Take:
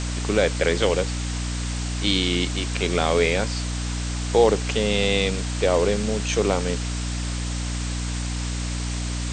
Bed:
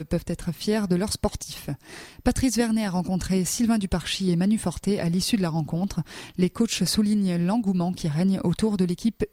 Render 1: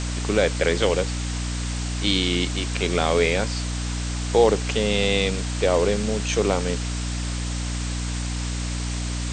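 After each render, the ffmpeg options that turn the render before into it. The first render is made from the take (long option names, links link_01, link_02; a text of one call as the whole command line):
ffmpeg -i in.wav -af anull out.wav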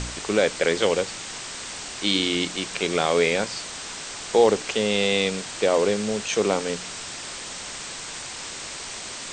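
ffmpeg -i in.wav -af "bandreject=frequency=60:width_type=h:width=4,bandreject=frequency=120:width_type=h:width=4,bandreject=frequency=180:width_type=h:width=4,bandreject=frequency=240:width_type=h:width=4,bandreject=frequency=300:width_type=h:width=4" out.wav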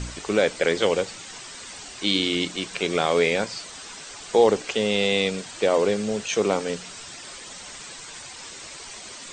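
ffmpeg -i in.wav -af "afftdn=noise_reduction=9:noise_floor=-36" out.wav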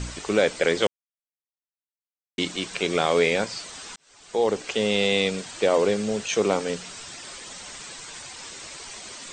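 ffmpeg -i in.wav -filter_complex "[0:a]asplit=4[link_01][link_02][link_03][link_04];[link_01]atrim=end=0.87,asetpts=PTS-STARTPTS,afade=type=out:start_time=0.866:duration=0.004:curve=hsin[link_05];[link_02]atrim=start=0.87:end=2.38,asetpts=PTS-STARTPTS,volume=0[link_06];[link_03]atrim=start=2.38:end=3.96,asetpts=PTS-STARTPTS,afade=type=in:duration=0.004:curve=hsin,afade=type=out:start_time=1.576:duration=0.004:curve=hsin[link_07];[link_04]atrim=start=3.96,asetpts=PTS-STARTPTS,afade=type=in:duration=0.88[link_08];[link_05][link_06][link_07][link_08]concat=n=4:v=0:a=1" out.wav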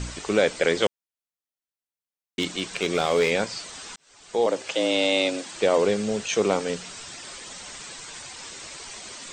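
ffmpeg -i in.wav -filter_complex "[0:a]asettb=1/sr,asplit=3[link_01][link_02][link_03];[link_01]atrim=end=2.394[link_04];[link_02]atrim=start=2.39:end=3.31,asetpts=PTS-STARTPTS,afade=type=in:duration=0.004:curve=qsin,afade=type=out:start_time=0.916:duration=0.004:curve=qsin,asoftclip=type=hard:threshold=-14.5dB[link_05];[link_03]atrim=start=3.306[link_06];[link_04][link_05]acrossfade=duration=0.004:curve1=hsin:curve2=qsin[link_07];[link_07][link_06]acrossfade=duration=0.004:curve1=qsin:curve2=hsin,asettb=1/sr,asplit=3[link_08][link_09][link_10];[link_08]atrim=end=4.464[link_11];[link_09]atrim=start=4.46:end=5.56,asetpts=PTS-STARTPTS,afade=type=in:duration=0.004:curve=qsin,afade=type=out:start_time=1.096:duration=0.004:curve=qsin,afreqshift=84[link_12];[link_10]atrim=start=5.556[link_13];[link_11][link_12]acrossfade=duration=0.004:curve1=hsin:curve2=qsin[link_14];[link_14][link_13]acrossfade=duration=0.004:curve1=qsin:curve2=hsin" out.wav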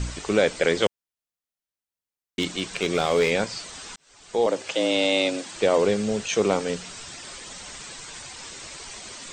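ffmpeg -i in.wav -af "lowshelf=frequency=130:gain=5.5" out.wav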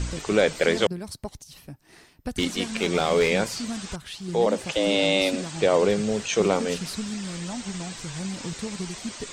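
ffmpeg -i in.wav -i bed.wav -filter_complex "[1:a]volume=-10.5dB[link_01];[0:a][link_01]amix=inputs=2:normalize=0" out.wav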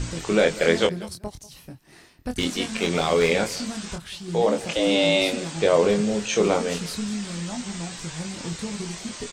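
ffmpeg -i in.wav -filter_complex "[0:a]asplit=2[link_01][link_02];[link_02]adelay=24,volume=-5dB[link_03];[link_01][link_03]amix=inputs=2:normalize=0,asplit=2[link_04][link_05];[link_05]adelay=192.4,volume=-19dB,highshelf=frequency=4000:gain=-4.33[link_06];[link_04][link_06]amix=inputs=2:normalize=0" out.wav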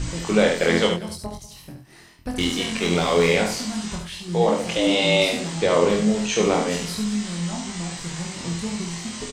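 ffmpeg -i in.wav -filter_complex "[0:a]asplit=2[link_01][link_02];[link_02]adelay=23,volume=-4.5dB[link_03];[link_01][link_03]amix=inputs=2:normalize=0,asplit=2[link_04][link_05];[link_05]aecho=0:1:71:0.531[link_06];[link_04][link_06]amix=inputs=2:normalize=0" out.wav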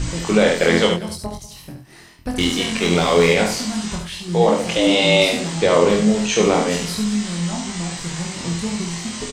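ffmpeg -i in.wav -af "volume=4dB,alimiter=limit=-3dB:level=0:latency=1" out.wav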